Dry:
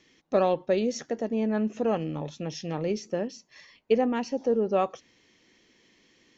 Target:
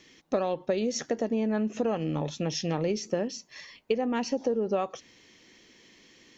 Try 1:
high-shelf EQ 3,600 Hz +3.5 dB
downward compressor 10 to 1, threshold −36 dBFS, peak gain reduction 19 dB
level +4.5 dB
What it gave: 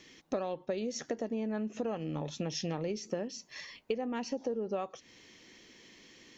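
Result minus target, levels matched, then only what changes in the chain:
downward compressor: peak gain reduction +7 dB
change: downward compressor 10 to 1, threshold −28 dBFS, peak gain reduction 12 dB

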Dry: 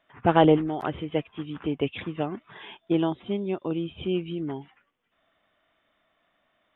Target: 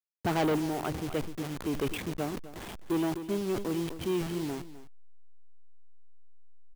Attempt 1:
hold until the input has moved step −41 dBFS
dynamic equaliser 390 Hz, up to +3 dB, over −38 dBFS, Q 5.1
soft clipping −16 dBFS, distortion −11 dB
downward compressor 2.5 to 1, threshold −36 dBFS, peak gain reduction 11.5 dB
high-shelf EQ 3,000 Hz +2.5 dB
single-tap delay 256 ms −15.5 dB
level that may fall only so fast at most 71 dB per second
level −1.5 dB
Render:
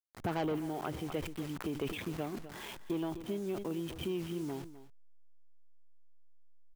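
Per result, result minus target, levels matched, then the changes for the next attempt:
downward compressor: peak gain reduction +11.5 dB; hold until the input has moved: distortion −7 dB; soft clipping: distortion −5 dB
remove: downward compressor 2.5 to 1, threshold −36 dBFS, peak gain reduction 11.5 dB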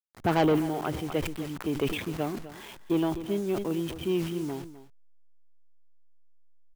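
hold until the input has moved: distortion −7 dB; soft clipping: distortion −5 dB
change: hold until the input has moved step −34.5 dBFS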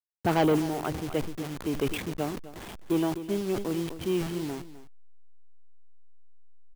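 soft clipping: distortion −5 dB
change: soft clipping −22.5 dBFS, distortion −6 dB

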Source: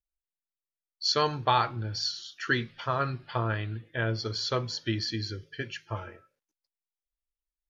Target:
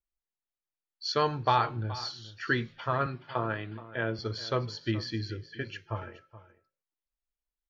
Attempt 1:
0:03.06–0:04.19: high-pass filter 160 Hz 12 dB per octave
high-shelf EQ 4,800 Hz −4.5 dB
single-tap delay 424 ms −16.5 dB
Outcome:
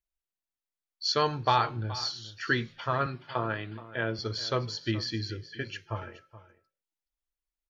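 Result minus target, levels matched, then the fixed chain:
8,000 Hz band +5.0 dB
0:03.06–0:04.19: high-pass filter 160 Hz 12 dB per octave
high-shelf EQ 4,800 Hz −14.5 dB
single-tap delay 424 ms −16.5 dB

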